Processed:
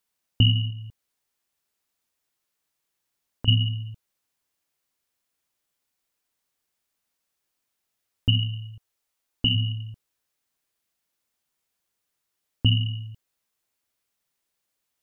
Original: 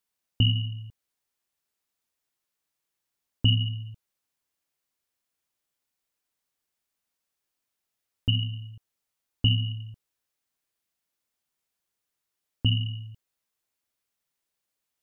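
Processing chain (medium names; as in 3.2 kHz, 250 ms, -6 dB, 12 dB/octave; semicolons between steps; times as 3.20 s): 0.70–3.48 s: compression, threshold -36 dBFS, peak gain reduction 17.5 dB; 8.37–9.54 s: peaking EQ 360 Hz -> 88 Hz -13.5 dB 0.65 oct; trim +3.5 dB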